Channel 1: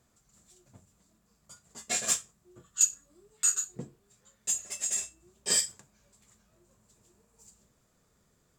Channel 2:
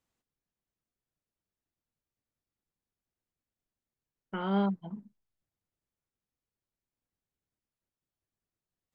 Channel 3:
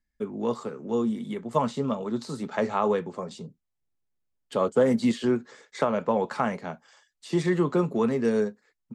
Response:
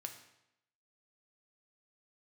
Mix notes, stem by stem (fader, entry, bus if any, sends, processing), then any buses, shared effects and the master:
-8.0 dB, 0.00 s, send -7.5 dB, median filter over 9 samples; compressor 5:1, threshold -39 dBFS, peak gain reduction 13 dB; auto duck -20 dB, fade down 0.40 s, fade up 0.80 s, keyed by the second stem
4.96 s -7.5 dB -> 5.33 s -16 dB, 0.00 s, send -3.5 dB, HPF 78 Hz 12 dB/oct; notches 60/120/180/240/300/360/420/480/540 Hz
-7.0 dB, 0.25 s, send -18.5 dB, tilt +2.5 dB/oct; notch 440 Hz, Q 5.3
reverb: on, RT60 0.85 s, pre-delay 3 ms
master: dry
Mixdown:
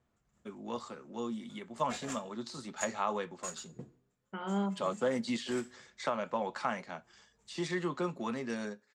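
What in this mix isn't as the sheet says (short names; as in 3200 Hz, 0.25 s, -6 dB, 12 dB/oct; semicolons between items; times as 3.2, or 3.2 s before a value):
stem 1: missing compressor 5:1, threshold -39 dBFS, peak gain reduction 13 dB; master: extra LPF 6300 Hz 12 dB/oct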